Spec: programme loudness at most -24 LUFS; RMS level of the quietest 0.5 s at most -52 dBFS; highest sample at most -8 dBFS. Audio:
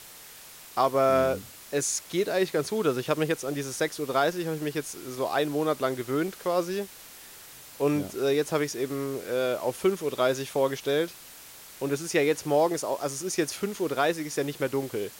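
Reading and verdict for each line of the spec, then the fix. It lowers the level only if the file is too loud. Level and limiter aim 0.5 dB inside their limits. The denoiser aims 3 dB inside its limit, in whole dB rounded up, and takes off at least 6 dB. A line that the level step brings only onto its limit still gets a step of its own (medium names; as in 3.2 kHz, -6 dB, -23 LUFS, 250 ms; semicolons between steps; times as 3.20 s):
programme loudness -28.0 LUFS: pass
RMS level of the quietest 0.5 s -47 dBFS: fail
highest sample -10.5 dBFS: pass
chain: noise reduction 8 dB, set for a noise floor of -47 dBFS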